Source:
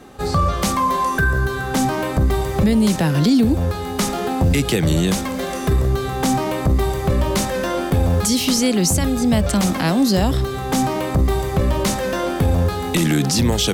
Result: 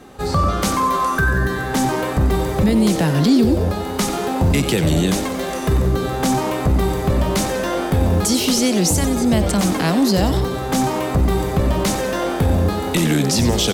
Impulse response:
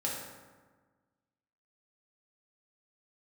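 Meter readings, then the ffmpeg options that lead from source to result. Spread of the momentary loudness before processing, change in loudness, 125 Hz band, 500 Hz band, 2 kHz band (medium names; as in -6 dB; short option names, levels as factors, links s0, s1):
5 LU, +0.5 dB, 0.0 dB, +1.5 dB, +0.5 dB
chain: -filter_complex "[0:a]asplit=7[s0][s1][s2][s3][s4][s5][s6];[s1]adelay=92,afreqshift=120,volume=0.299[s7];[s2]adelay=184,afreqshift=240,volume=0.153[s8];[s3]adelay=276,afreqshift=360,volume=0.0776[s9];[s4]adelay=368,afreqshift=480,volume=0.0398[s10];[s5]adelay=460,afreqshift=600,volume=0.0202[s11];[s6]adelay=552,afreqshift=720,volume=0.0104[s12];[s0][s7][s8][s9][s10][s11][s12]amix=inputs=7:normalize=0"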